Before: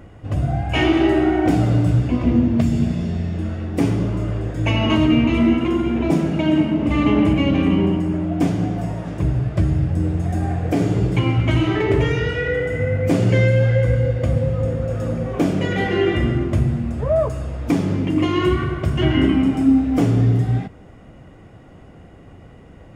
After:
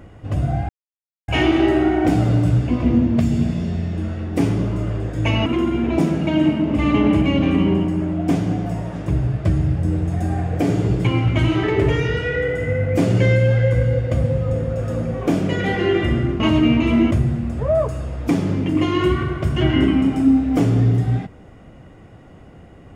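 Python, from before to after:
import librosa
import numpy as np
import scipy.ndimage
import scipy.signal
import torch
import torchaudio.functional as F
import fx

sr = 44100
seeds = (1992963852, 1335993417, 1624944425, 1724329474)

y = fx.edit(x, sr, fx.insert_silence(at_s=0.69, length_s=0.59),
    fx.move(start_s=4.87, length_s=0.71, to_s=16.52), tone=tone)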